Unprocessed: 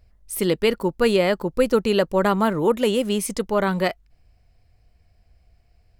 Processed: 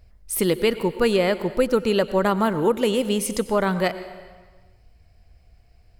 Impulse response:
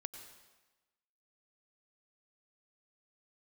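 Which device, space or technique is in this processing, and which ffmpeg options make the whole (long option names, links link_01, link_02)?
ducked reverb: -filter_complex "[0:a]asplit=3[link_01][link_02][link_03];[1:a]atrim=start_sample=2205[link_04];[link_02][link_04]afir=irnorm=-1:irlink=0[link_05];[link_03]apad=whole_len=264421[link_06];[link_05][link_06]sidechaincompress=threshold=-21dB:ratio=8:attack=9.5:release=1160,volume=9dB[link_07];[link_01][link_07]amix=inputs=2:normalize=0,volume=-5.5dB"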